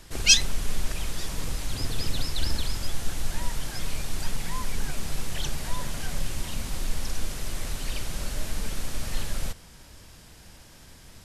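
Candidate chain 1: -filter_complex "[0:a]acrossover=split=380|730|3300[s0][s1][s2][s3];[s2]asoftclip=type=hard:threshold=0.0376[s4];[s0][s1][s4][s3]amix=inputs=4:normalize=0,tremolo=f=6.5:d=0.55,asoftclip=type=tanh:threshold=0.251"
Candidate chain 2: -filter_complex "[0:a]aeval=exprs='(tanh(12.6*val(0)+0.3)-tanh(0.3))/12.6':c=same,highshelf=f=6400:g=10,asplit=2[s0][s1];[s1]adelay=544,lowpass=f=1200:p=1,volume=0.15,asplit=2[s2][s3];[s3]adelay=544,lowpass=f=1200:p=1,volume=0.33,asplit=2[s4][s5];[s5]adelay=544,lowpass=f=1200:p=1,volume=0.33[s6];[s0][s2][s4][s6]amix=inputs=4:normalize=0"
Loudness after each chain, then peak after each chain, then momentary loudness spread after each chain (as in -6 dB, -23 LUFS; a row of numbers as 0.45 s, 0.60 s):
-34.0 LUFS, -32.0 LUFS; -12.0 dBFS, -11.0 dBFS; 18 LU, 14 LU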